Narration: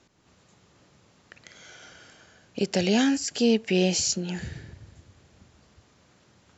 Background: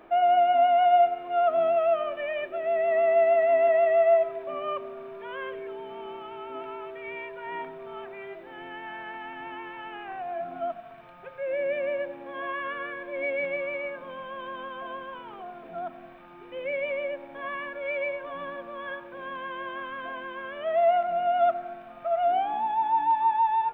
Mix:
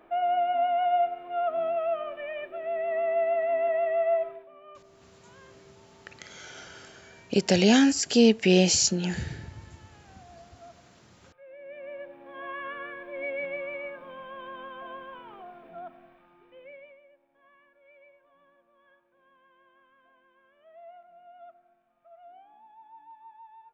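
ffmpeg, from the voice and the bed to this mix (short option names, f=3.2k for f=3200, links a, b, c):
-filter_complex "[0:a]adelay=4750,volume=3dB[a];[1:a]volume=9.5dB,afade=t=out:st=4.27:d=0.22:silence=0.211349,afade=t=in:st=11.6:d=1.04:silence=0.188365,afade=t=out:st=15.32:d=1.68:silence=0.0707946[b];[a][b]amix=inputs=2:normalize=0"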